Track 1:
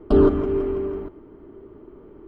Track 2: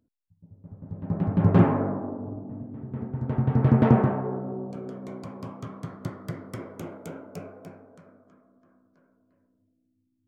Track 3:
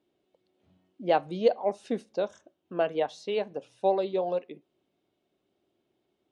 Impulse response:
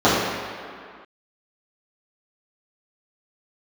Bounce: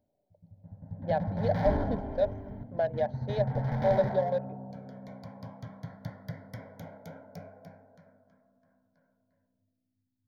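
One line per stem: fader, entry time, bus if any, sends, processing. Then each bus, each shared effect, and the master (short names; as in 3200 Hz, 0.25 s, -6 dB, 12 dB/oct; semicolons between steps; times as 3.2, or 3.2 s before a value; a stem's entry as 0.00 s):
-8.0 dB, 1.55 s, no send, dry
-2.5 dB, 0.00 s, no send, hard clip -23 dBFS, distortion -5 dB
+0.5 dB, 0.00 s, no send, Wiener smoothing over 25 samples; limiter -21 dBFS, peak gain reduction 10 dB; small resonant body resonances 370/590/1700/2500 Hz, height 10 dB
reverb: off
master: fixed phaser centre 1800 Hz, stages 8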